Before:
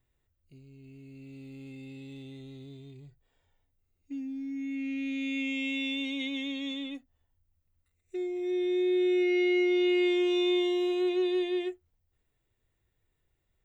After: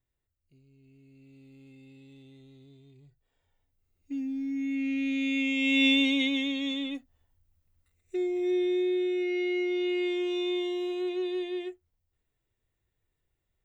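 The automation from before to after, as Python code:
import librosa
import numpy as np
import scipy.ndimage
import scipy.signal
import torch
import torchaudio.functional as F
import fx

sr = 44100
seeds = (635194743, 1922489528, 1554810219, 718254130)

y = fx.gain(x, sr, db=fx.line((2.88, -8.0), (4.21, 4.0), (5.56, 4.0), (5.86, 11.0), (6.53, 4.0), (8.47, 4.0), (9.13, -3.5)))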